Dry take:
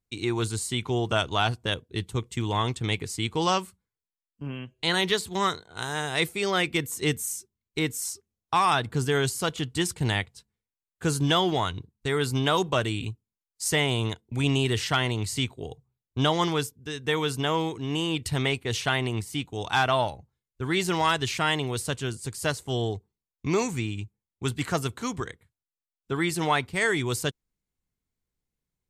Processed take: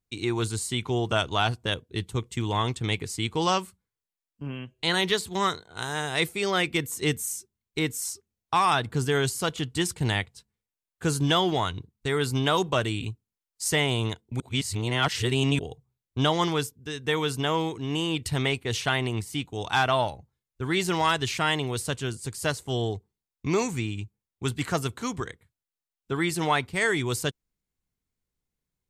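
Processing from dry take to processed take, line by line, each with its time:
0:14.40–0:15.59: reverse

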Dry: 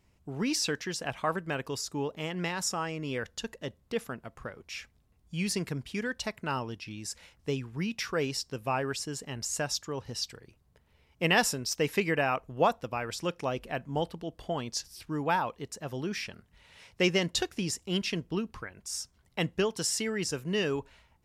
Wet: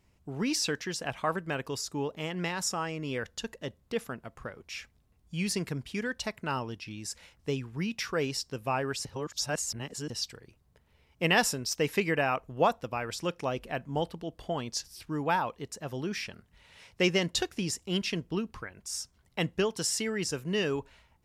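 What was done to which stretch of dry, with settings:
0:09.05–0:10.10: reverse

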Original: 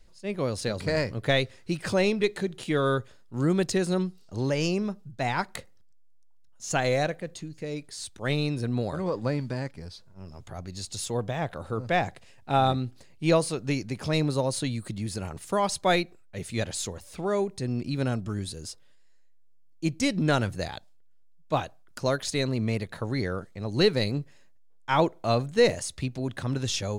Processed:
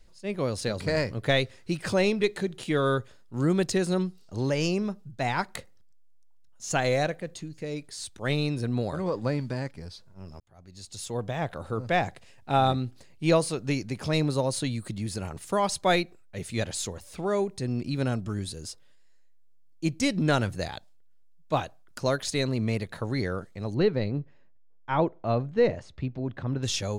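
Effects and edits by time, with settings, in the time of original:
0:10.40–0:11.42: fade in
0:23.74–0:26.63: head-to-tape spacing loss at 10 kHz 32 dB

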